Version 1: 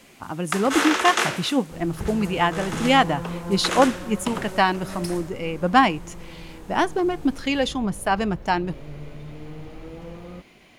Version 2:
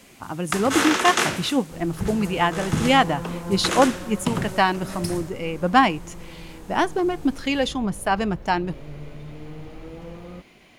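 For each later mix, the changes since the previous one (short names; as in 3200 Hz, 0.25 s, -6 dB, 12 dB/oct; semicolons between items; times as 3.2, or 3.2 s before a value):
first sound: add tone controls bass +12 dB, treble +3 dB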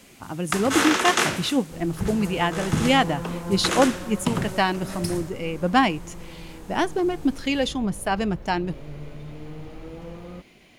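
speech: add bell 1100 Hz -4.5 dB 1.4 oct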